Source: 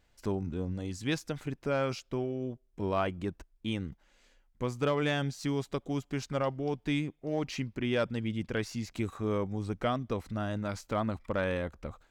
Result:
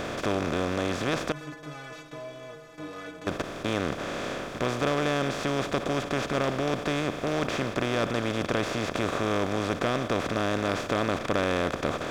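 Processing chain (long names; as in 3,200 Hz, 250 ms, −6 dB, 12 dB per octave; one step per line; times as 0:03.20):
compressor on every frequency bin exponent 0.2
0:01.32–0:03.27: stiff-string resonator 150 Hz, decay 0.33 s, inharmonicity 0.008
level −3.5 dB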